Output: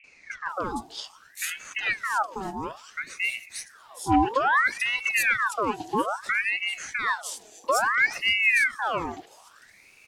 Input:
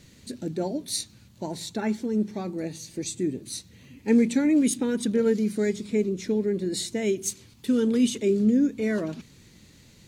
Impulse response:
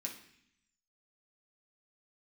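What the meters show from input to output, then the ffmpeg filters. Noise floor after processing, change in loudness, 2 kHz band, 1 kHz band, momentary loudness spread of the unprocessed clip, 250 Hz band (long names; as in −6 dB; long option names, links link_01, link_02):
−55 dBFS, +1.0 dB, +17.5 dB, +16.5 dB, 14 LU, −11.5 dB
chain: -filter_complex "[0:a]acrossover=split=670|4900[link_01][link_02][link_03];[link_02]adelay=40[link_04];[link_03]adelay=490[link_05];[link_01][link_04][link_05]amix=inputs=3:normalize=0,aeval=exprs='val(0)*sin(2*PI*1500*n/s+1500*0.65/0.6*sin(2*PI*0.6*n/s))':channel_layout=same,volume=2dB"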